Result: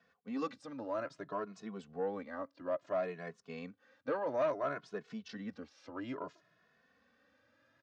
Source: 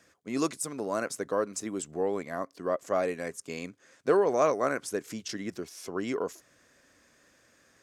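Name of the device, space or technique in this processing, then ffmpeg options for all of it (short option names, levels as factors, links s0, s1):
barber-pole flanger into a guitar amplifier: -filter_complex "[0:a]asplit=2[s0][s1];[s1]adelay=2.3,afreqshift=0.59[s2];[s0][s2]amix=inputs=2:normalize=1,asoftclip=type=tanh:threshold=0.0841,highpass=100,equalizer=f=370:t=q:w=4:g=-10,equalizer=f=2200:t=q:w=4:g=-6,equalizer=f=3200:t=q:w=4:g=-3,lowpass=f=3900:w=0.5412,lowpass=f=3900:w=1.3066,volume=0.75"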